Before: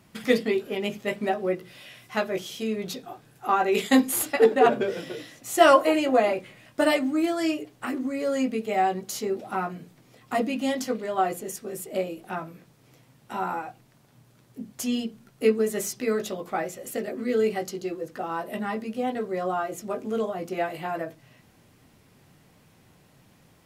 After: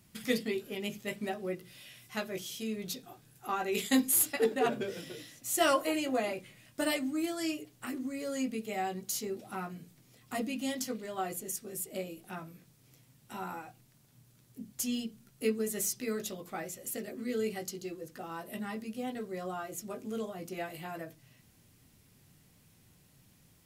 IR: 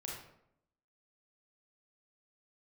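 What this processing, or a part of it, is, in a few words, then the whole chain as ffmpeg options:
smiley-face EQ: -af "lowshelf=frequency=140:gain=4,equalizer=frequency=750:width_type=o:width=2.6:gain=-6.5,highshelf=frequency=5700:gain=8.5,volume=-6dB"

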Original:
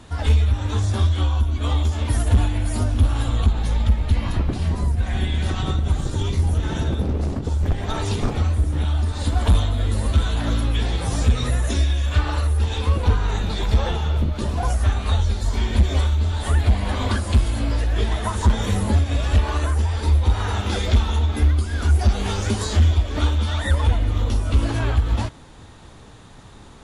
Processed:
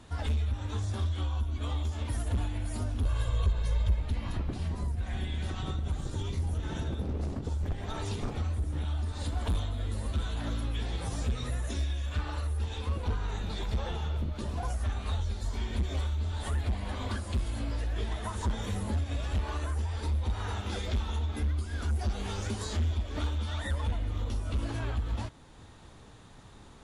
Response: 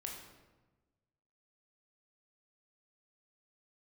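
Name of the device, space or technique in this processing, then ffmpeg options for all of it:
clipper into limiter: -filter_complex "[0:a]asoftclip=type=hard:threshold=-12.5dB,alimiter=limit=-16.5dB:level=0:latency=1:release=362,asettb=1/sr,asplit=3[link_01][link_02][link_03];[link_01]atrim=end=3.054[link_04];[link_02]atrim=start=3.05:end=4,asetpts=PTS-STARTPTS,afade=type=in:duration=0.004:curve=qsin,afade=type=out:start_time=0.946:duration=0.004:curve=qsin,aecho=1:1:1.9:0.81,atrim=end_sample=41895[link_05];[link_03]atrim=start=3.996[link_06];[link_04][link_05]acrossfade=duration=0.004:curve1=hsin:curve2=qsin[link_07];[link_07][link_06]acrossfade=duration=0.004:curve1=qsin:curve2=hsin,volume=-8dB"

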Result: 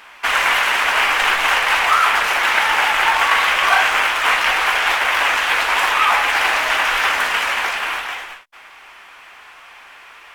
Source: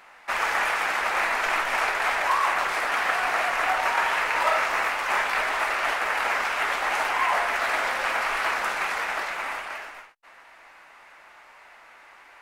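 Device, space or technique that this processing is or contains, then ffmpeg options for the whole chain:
nightcore: -af "asetrate=52920,aresample=44100,volume=8.5dB"

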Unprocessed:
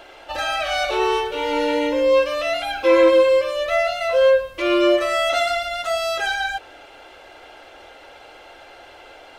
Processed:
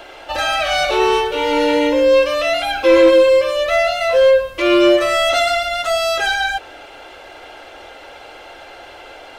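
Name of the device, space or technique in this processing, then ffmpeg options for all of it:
one-band saturation: -filter_complex "[0:a]acrossover=split=480|2300[link_01][link_02][link_03];[link_02]asoftclip=type=tanh:threshold=-19.5dB[link_04];[link_01][link_04][link_03]amix=inputs=3:normalize=0,volume=6dB"

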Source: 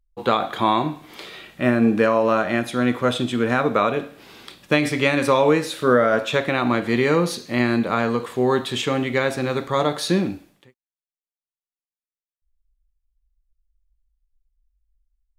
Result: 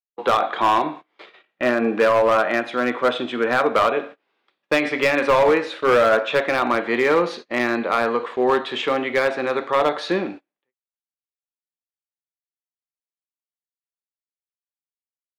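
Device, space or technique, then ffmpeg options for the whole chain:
walkie-talkie: -af "highpass=420,lowpass=2600,asoftclip=type=hard:threshold=-15.5dB,agate=range=-28dB:threshold=-39dB:ratio=16:detection=peak,volume=4.5dB"

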